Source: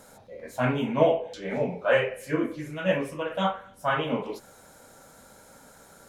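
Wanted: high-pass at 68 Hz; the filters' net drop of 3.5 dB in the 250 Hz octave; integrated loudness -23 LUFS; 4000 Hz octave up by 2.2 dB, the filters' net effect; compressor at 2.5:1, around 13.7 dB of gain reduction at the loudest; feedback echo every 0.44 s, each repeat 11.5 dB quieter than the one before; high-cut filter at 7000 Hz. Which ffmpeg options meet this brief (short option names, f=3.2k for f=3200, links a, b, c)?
-af "highpass=68,lowpass=7k,equalizer=f=250:t=o:g=-4.5,equalizer=f=4k:t=o:g=3.5,acompressor=threshold=-37dB:ratio=2.5,aecho=1:1:440|880|1320:0.266|0.0718|0.0194,volume=15dB"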